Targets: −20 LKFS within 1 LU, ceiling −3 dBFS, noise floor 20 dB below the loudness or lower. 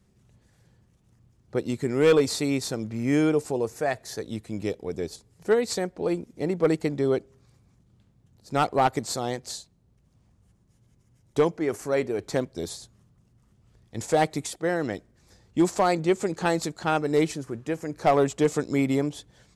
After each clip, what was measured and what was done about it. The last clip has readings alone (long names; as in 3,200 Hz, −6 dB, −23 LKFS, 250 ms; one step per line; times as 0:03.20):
share of clipped samples 0.3%; peaks flattened at −13.0 dBFS; integrated loudness −26.5 LKFS; sample peak −13.0 dBFS; target loudness −20.0 LKFS
→ clipped peaks rebuilt −13 dBFS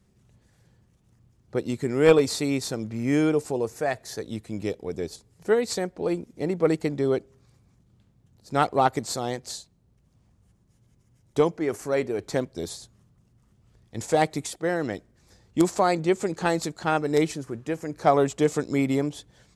share of clipped samples 0.0%; integrated loudness −26.0 LKFS; sample peak −4.0 dBFS; target loudness −20.0 LKFS
→ level +6 dB
brickwall limiter −3 dBFS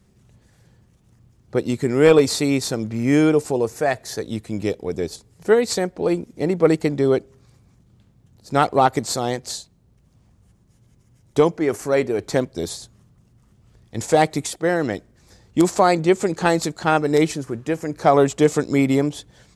integrated loudness −20.5 LKFS; sample peak −3.0 dBFS; background noise floor −58 dBFS